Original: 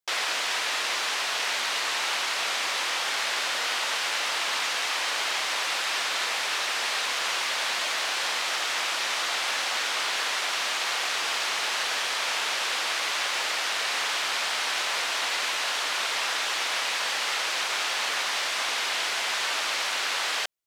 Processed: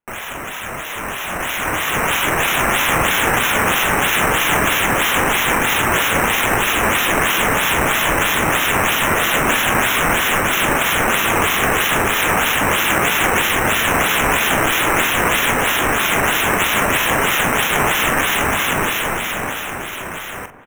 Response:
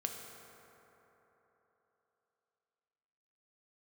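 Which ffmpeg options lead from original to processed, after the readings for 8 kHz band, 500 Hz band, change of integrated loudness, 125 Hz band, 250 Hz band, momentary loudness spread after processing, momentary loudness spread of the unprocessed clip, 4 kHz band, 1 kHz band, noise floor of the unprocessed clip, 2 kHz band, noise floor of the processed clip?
+8.5 dB, +17.0 dB, +10.5 dB, no reading, +27.0 dB, 8 LU, 0 LU, +4.0 dB, +13.0 dB, -29 dBFS, +11.0 dB, -28 dBFS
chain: -filter_complex "[0:a]asubboost=boost=10:cutoff=190,dynaudnorm=f=110:g=31:m=5.01,acrusher=samples=9:mix=1:aa=0.000001:lfo=1:lforange=9:lforate=3.1,asuperstop=centerf=4600:order=4:qfactor=1.6,asplit=2[s0][s1];[s1]adelay=44,volume=0.316[s2];[s0][s2]amix=inputs=2:normalize=0,asplit=2[s3][s4];[s4]adelay=1108,volume=0.126,highshelf=f=4000:g=-24.9[s5];[s3][s5]amix=inputs=2:normalize=0,asplit=2[s6][s7];[1:a]atrim=start_sample=2205[s8];[s7][s8]afir=irnorm=-1:irlink=0,volume=0.112[s9];[s6][s9]amix=inputs=2:normalize=0,volume=0.891"

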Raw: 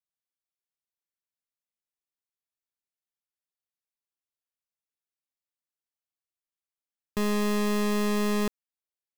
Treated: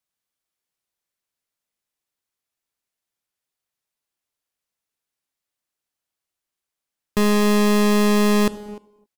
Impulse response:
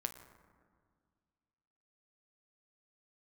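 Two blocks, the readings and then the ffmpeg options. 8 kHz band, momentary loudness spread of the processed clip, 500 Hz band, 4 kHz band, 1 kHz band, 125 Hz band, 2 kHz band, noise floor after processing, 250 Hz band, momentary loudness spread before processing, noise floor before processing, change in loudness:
+9.0 dB, 8 LU, +9.0 dB, +9.5 dB, +9.0 dB, +9.5 dB, +8.5 dB, under -85 dBFS, +9.5 dB, 6 LU, under -85 dBFS, +9.5 dB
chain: -filter_complex "[0:a]asplit=2[s0][s1];[s1]adelay=300,highpass=300,lowpass=3400,asoftclip=type=hard:threshold=0.02,volume=0.355[s2];[s0][s2]amix=inputs=2:normalize=0,asplit=2[s3][s4];[1:a]atrim=start_sample=2205,afade=t=out:st=0.21:d=0.01,atrim=end_sample=9702,asetrate=26019,aresample=44100[s5];[s4][s5]afir=irnorm=-1:irlink=0,volume=0.841[s6];[s3][s6]amix=inputs=2:normalize=0,volume=1.41"

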